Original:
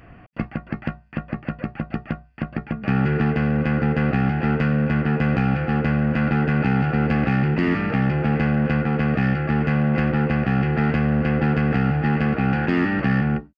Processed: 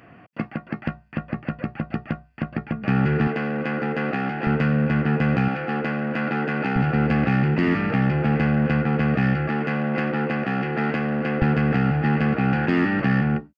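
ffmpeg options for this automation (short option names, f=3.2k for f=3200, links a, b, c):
-af "asetnsamples=n=441:p=0,asendcmd='0.87 highpass f 70;3.27 highpass f 270;4.47 highpass f 90;5.48 highpass f 260;6.76 highpass f 73;9.48 highpass f 230;11.42 highpass f 89',highpass=150"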